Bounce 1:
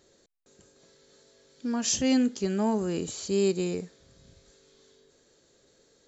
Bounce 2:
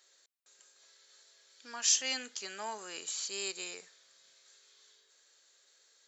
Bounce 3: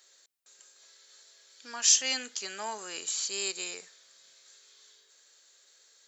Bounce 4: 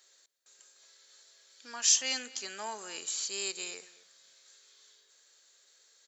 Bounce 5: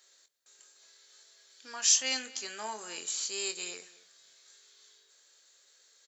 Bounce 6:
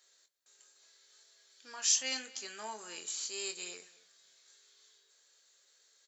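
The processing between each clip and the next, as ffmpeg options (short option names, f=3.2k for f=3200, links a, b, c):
-af "highpass=1.3k,volume=1dB"
-af "highshelf=f=5k:g=4,volume=3dB"
-filter_complex "[0:a]asplit=2[a][b];[b]adelay=227.4,volume=-19dB,highshelf=f=4k:g=-5.12[c];[a][c]amix=inputs=2:normalize=0,volume=-2.5dB"
-filter_complex "[0:a]asplit=2[a][b];[b]adelay=23,volume=-9dB[c];[a][c]amix=inputs=2:normalize=0"
-af "flanger=delay=4.1:depth=3.2:regen=-71:speed=0.75:shape=sinusoidal"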